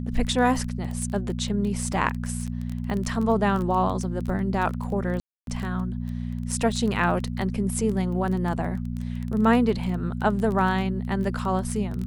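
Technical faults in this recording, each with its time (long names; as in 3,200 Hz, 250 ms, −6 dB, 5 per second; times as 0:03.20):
surface crackle 16 per second −28 dBFS
mains hum 60 Hz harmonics 4 −30 dBFS
0:01.93: drop-out 2.7 ms
0:05.20–0:05.47: drop-out 272 ms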